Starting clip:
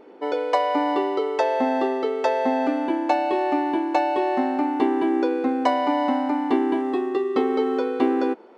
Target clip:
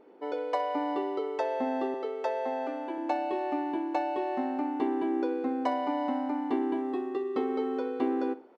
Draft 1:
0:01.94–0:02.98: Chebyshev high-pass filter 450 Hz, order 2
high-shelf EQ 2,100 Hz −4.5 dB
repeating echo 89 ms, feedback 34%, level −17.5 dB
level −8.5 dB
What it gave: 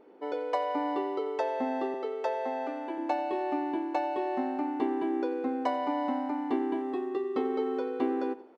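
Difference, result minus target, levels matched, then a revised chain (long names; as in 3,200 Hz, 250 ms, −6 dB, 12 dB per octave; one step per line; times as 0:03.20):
echo 28 ms late
0:01.94–0:02.98: Chebyshev high-pass filter 450 Hz, order 2
high-shelf EQ 2,100 Hz −4.5 dB
repeating echo 61 ms, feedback 34%, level −17.5 dB
level −8.5 dB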